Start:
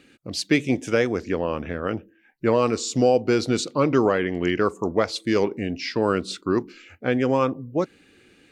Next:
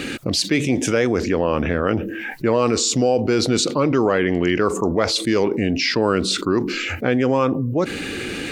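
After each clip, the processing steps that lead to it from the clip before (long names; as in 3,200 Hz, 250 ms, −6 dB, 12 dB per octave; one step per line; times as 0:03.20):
envelope flattener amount 70%
level −1 dB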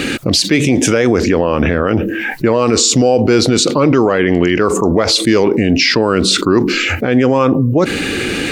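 boost into a limiter +10.5 dB
level −1 dB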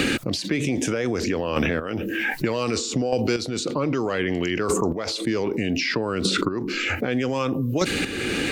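square-wave tremolo 0.64 Hz, depth 65%, duty 15%
multiband upward and downward compressor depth 100%
level −5 dB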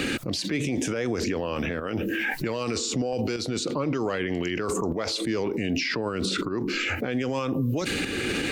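brickwall limiter −18.5 dBFS, peak gain reduction 10.5 dB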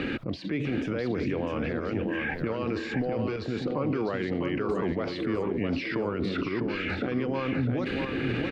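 high-frequency loss of the air 360 metres
on a send: repeating echo 653 ms, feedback 28%, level −5.5 dB
on the sum: level −1.5 dB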